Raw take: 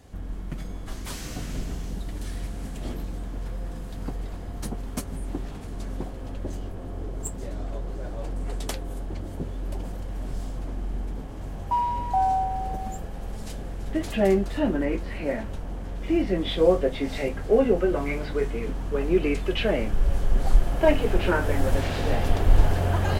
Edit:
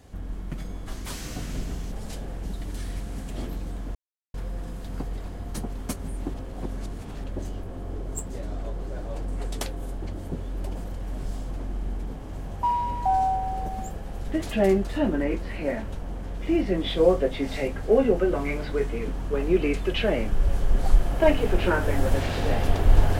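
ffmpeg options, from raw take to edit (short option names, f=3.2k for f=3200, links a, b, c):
-filter_complex "[0:a]asplit=7[a][b][c][d][e][f][g];[a]atrim=end=1.922[h];[b]atrim=start=13.288:end=13.822[i];[c]atrim=start=1.918:end=3.42,asetpts=PTS-STARTPTS,afade=t=out:st=1.498:d=0.004:c=hsin,apad=pad_dur=0.39[j];[d]atrim=start=3.42:end=5.422,asetpts=PTS-STARTPTS,afade=t=in:d=0.004:c=hsin[k];[e]atrim=start=5.418:end=6.322,asetpts=PTS-STARTPTS,areverse[l];[f]atrim=start=6.318:end=13.292[m];[g]atrim=start=13.818[n];[h][i]acrossfade=d=0.004:c1=hsin:c2=hsin[o];[j][k]concat=n=2:v=0:a=1[p];[o][p]acrossfade=d=0.004:c1=hsin:c2=hsin[q];[q][l]acrossfade=d=0.004:c1=hsin:c2=hsin[r];[r][m]acrossfade=d=0.004:c1=hsin:c2=hsin[s];[s][n]acrossfade=d=0.004:c1=hsin:c2=hsin"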